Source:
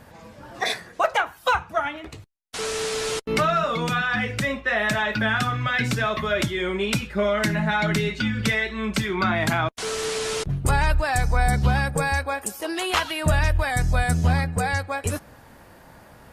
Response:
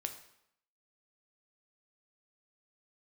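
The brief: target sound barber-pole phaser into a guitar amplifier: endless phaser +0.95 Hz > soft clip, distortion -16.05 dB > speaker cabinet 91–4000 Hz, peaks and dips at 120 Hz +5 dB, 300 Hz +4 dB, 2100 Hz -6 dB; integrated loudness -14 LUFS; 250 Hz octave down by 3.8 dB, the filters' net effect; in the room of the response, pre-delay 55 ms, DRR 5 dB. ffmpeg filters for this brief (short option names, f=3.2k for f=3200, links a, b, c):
-filter_complex "[0:a]equalizer=f=250:t=o:g=-7.5,asplit=2[a][b];[1:a]atrim=start_sample=2205,adelay=55[c];[b][c]afir=irnorm=-1:irlink=0,volume=-4.5dB[d];[a][d]amix=inputs=2:normalize=0,asplit=2[e][f];[f]afreqshift=0.95[g];[e][g]amix=inputs=2:normalize=1,asoftclip=threshold=-17.5dB,highpass=91,equalizer=f=120:t=q:w=4:g=5,equalizer=f=300:t=q:w=4:g=4,equalizer=f=2.1k:t=q:w=4:g=-6,lowpass=f=4k:w=0.5412,lowpass=f=4k:w=1.3066,volume=15dB"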